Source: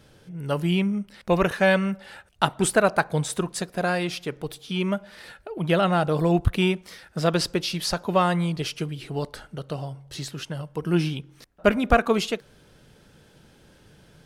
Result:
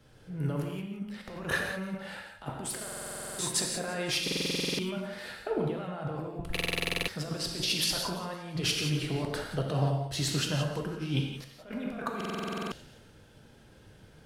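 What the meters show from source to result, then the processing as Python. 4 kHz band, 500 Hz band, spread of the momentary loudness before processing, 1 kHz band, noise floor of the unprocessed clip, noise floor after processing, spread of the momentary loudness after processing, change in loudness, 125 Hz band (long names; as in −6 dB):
−0.5 dB, −11.5 dB, 14 LU, −12.5 dB, −56 dBFS, −56 dBFS, 11 LU, −7.5 dB, −6.0 dB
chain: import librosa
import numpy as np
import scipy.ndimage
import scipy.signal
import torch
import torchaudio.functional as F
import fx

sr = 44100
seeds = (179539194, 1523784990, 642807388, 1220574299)

y = fx.over_compress(x, sr, threshold_db=-31.0, ratio=-1.0)
y = fx.echo_split(y, sr, split_hz=2600.0, low_ms=81, high_ms=171, feedback_pct=52, wet_db=-13.0)
y = fx.rev_gated(y, sr, seeds[0], gate_ms=210, shape='flat', drr_db=1.0)
y = fx.buffer_glitch(y, sr, at_s=(2.83, 4.23, 6.52, 12.16), block=2048, repeats=11)
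y = fx.band_widen(y, sr, depth_pct=40)
y = F.gain(torch.from_numpy(y), -4.0).numpy()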